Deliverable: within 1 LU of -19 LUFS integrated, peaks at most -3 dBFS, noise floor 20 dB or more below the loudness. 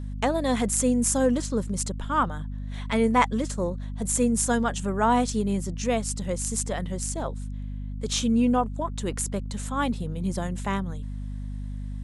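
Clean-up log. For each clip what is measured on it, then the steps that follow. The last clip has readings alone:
hum 50 Hz; highest harmonic 250 Hz; hum level -30 dBFS; loudness -26.5 LUFS; peak level -7.5 dBFS; loudness target -19.0 LUFS
-> hum notches 50/100/150/200/250 Hz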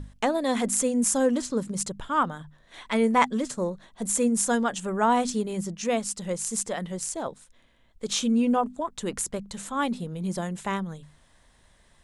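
hum not found; loudness -26.5 LUFS; peak level -8.0 dBFS; loudness target -19.0 LUFS
-> trim +7.5 dB; peak limiter -3 dBFS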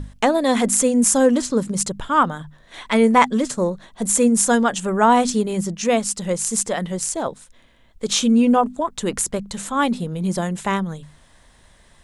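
loudness -19.5 LUFS; peak level -3.0 dBFS; noise floor -53 dBFS

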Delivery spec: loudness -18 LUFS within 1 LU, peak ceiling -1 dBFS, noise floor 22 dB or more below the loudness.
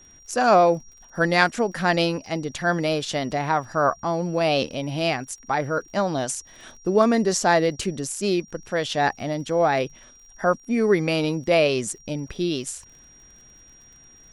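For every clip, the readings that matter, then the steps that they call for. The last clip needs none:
tick rate 44 per s; steady tone 5.7 kHz; tone level -49 dBFS; loudness -23.0 LUFS; peak level -4.5 dBFS; loudness target -18.0 LUFS
-> de-click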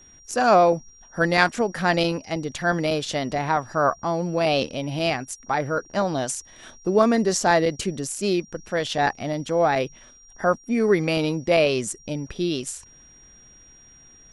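tick rate 0 per s; steady tone 5.7 kHz; tone level -49 dBFS
-> band-stop 5.7 kHz, Q 30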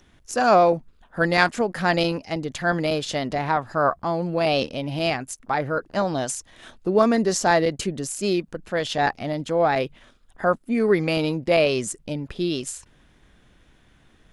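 steady tone not found; loudness -23.0 LUFS; peak level -4.5 dBFS; loudness target -18.0 LUFS
-> trim +5 dB; peak limiter -1 dBFS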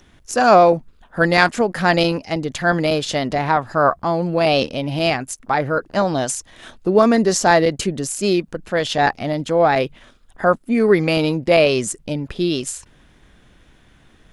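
loudness -18.0 LUFS; peak level -1.0 dBFS; noise floor -52 dBFS

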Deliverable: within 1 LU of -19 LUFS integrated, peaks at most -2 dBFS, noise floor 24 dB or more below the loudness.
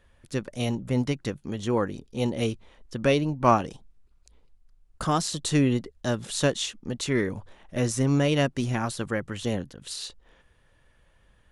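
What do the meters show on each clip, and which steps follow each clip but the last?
loudness -27.0 LUFS; peak level -6.5 dBFS; loudness target -19.0 LUFS
-> trim +8 dB; peak limiter -2 dBFS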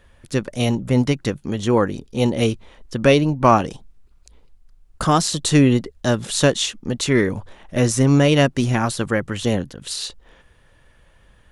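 loudness -19.5 LUFS; peak level -2.0 dBFS; noise floor -54 dBFS

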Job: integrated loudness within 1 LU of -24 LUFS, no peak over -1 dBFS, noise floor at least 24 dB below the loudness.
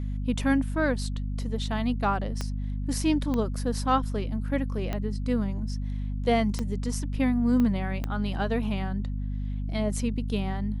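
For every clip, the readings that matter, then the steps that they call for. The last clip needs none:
clicks found 6; hum 50 Hz; highest harmonic 250 Hz; hum level -28 dBFS; loudness -28.5 LUFS; peak level -11.0 dBFS; loudness target -24.0 LUFS
-> de-click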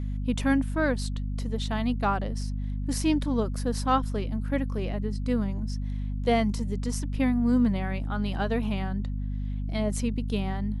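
clicks found 0; hum 50 Hz; highest harmonic 250 Hz; hum level -28 dBFS
-> de-hum 50 Hz, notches 5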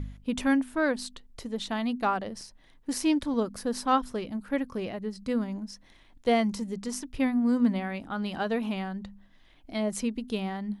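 hum not found; loudness -29.5 LUFS; peak level -12.5 dBFS; loudness target -24.0 LUFS
-> trim +5.5 dB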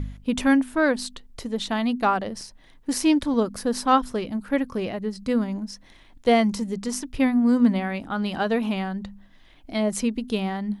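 loudness -24.0 LUFS; peak level -7.0 dBFS; noise floor -52 dBFS

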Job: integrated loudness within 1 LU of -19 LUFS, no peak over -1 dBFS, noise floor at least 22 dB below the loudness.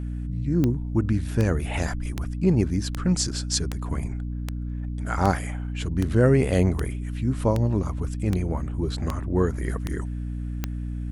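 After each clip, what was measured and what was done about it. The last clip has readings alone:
clicks found 14; hum 60 Hz; highest harmonic 300 Hz; hum level -27 dBFS; loudness -26.0 LUFS; peak level -6.0 dBFS; loudness target -19.0 LUFS
-> de-click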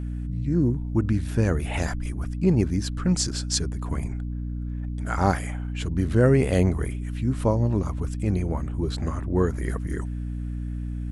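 clicks found 0; hum 60 Hz; highest harmonic 300 Hz; hum level -27 dBFS
-> hum notches 60/120/180/240/300 Hz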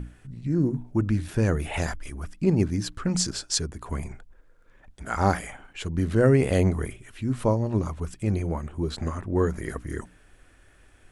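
hum not found; loudness -26.5 LUFS; peak level -6.0 dBFS; loudness target -19.0 LUFS
-> trim +7.5 dB; peak limiter -1 dBFS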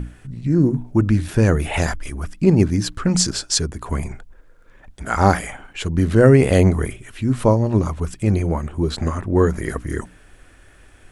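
loudness -19.0 LUFS; peak level -1.0 dBFS; noise floor -48 dBFS

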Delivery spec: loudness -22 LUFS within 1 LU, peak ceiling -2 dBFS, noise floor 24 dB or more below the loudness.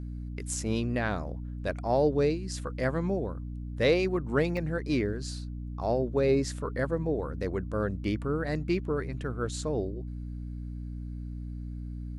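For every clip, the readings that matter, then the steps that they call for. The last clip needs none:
dropouts 2; longest dropout 1.3 ms; hum 60 Hz; highest harmonic 300 Hz; hum level -35 dBFS; loudness -31.0 LUFS; peak level -12.5 dBFS; loudness target -22.0 LUFS
-> interpolate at 0.54/4.57 s, 1.3 ms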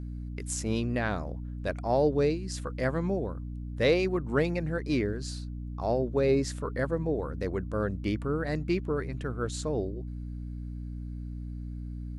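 dropouts 0; hum 60 Hz; highest harmonic 300 Hz; hum level -35 dBFS
-> hum notches 60/120/180/240/300 Hz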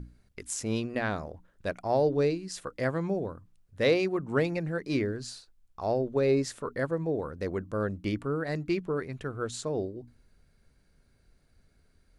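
hum not found; loudness -30.5 LUFS; peak level -12.0 dBFS; loudness target -22.0 LUFS
-> trim +8.5 dB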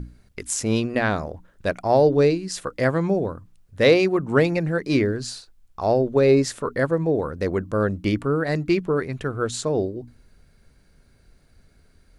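loudness -22.0 LUFS; peak level -3.5 dBFS; noise floor -58 dBFS

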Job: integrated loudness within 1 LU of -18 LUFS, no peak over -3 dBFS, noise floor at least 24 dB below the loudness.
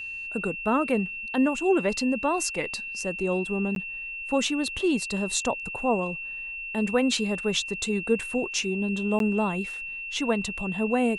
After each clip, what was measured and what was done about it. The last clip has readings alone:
dropouts 2; longest dropout 12 ms; steady tone 2.7 kHz; tone level -33 dBFS; loudness -27.0 LUFS; peak level -10.0 dBFS; loudness target -18.0 LUFS
-> interpolate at 3.75/9.19 s, 12 ms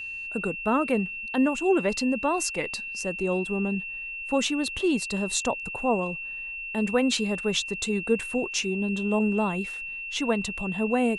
dropouts 0; steady tone 2.7 kHz; tone level -33 dBFS
-> band-stop 2.7 kHz, Q 30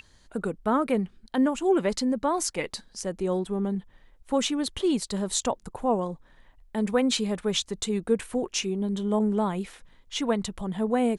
steady tone not found; loudness -27.5 LUFS; peak level -9.5 dBFS; loudness target -18.0 LUFS
-> trim +9.5 dB; peak limiter -3 dBFS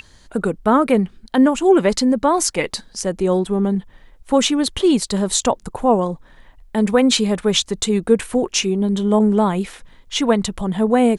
loudness -18.0 LUFS; peak level -3.0 dBFS; noise floor -49 dBFS

